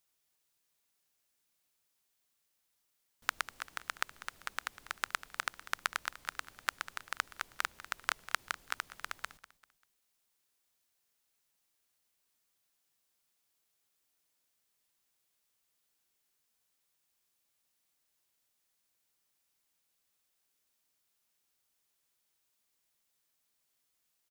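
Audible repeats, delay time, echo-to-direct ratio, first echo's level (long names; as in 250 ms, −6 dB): 3, 196 ms, −15.5 dB, −16.0 dB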